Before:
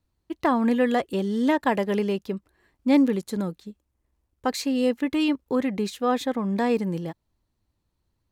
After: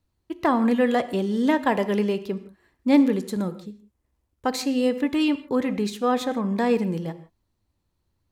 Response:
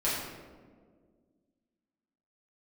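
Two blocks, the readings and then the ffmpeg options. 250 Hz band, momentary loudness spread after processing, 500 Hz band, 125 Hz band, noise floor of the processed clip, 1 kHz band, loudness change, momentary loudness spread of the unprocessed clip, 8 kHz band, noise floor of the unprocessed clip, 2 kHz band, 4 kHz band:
+1.0 dB, 12 LU, +1.0 dB, +1.0 dB, -75 dBFS, +1.0 dB, +1.0 dB, 11 LU, +1.0 dB, -77 dBFS, +1.0 dB, +1.0 dB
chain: -filter_complex "[0:a]asplit=2[s0][s1];[1:a]atrim=start_sample=2205,atrim=end_sample=4410,asetrate=25137,aresample=44100[s2];[s1][s2]afir=irnorm=-1:irlink=0,volume=0.075[s3];[s0][s3]amix=inputs=2:normalize=0"

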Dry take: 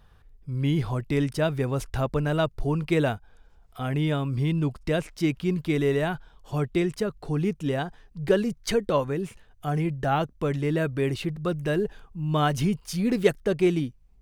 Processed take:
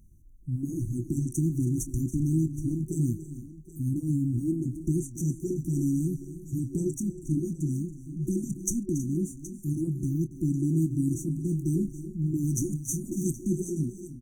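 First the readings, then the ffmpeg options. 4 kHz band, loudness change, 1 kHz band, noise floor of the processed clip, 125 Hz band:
under -40 dB, -3.0 dB, under -40 dB, -46 dBFS, -0.5 dB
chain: -filter_complex "[0:a]afftfilt=real='re*(1-between(b*sr/4096,370,5800))':imag='im*(1-between(b*sr/4096,370,5800))':win_size=4096:overlap=0.75,lowshelf=f=160:g=-5.5,afftfilt=real='re*lt(hypot(re,im),0.398)':imag='im*lt(hypot(re,im),0.398)':win_size=1024:overlap=0.75,adynamicequalizer=threshold=0.00126:dfrequency=6900:dqfactor=1.4:tfrequency=6900:tqfactor=1.4:attack=5:release=100:ratio=0.375:range=2:mode=boostabove:tftype=bell,asplit=2[s0][s1];[s1]adelay=25,volume=0.237[s2];[s0][s2]amix=inputs=2:normalize=0,asplit=2[s3][s4];[s4]aecho=0:1:280|321|771:0.178|0.141|0.158[s5];[s3][s5]amix=inputs=2:normalize=0,volume=1.68"

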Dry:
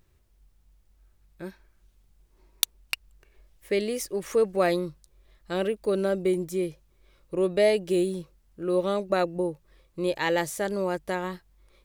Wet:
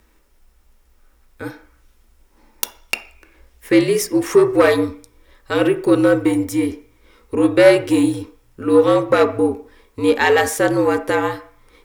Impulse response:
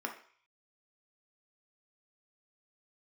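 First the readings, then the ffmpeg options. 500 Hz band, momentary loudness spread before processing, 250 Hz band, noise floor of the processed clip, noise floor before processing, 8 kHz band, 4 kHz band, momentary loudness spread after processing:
+10.0 dB, 14 LU, +13.0 dB, -56 dBFS, -64 dBFS, +8.0 dB, +6.5 dB, 14 LU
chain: -filter_complex "[0:a]afreqshift=-67,aeval=exprs='0.75*sin(PI/2*3.98*val(0)/0.75)':c=same,asplit=2[s0][s1];[1:a]atrim=start_sample=2205[s2];[s1][s2]afir=irnorm=-1:irlink=0,volume=0.891[s3];[s0][s3]amix=inputs=2:normalize=0,volume=0.376"

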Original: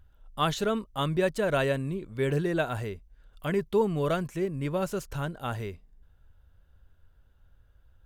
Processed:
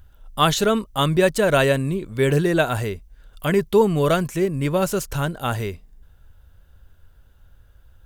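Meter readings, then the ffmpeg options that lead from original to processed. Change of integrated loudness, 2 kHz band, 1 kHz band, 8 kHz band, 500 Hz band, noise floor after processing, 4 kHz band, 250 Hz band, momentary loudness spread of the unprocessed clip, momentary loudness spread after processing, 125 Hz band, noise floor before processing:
+9.0 dB, +9.5 dB, +9.0 dB, +13.5 dB, +8.5 dB, -53 dBFS, +11.0 dB, +8.5 dB, 10 LU, 10 LU, +8.5 dB, -62 dBFS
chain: -af "highshelf=f=4800:g=7,volume=2.66"

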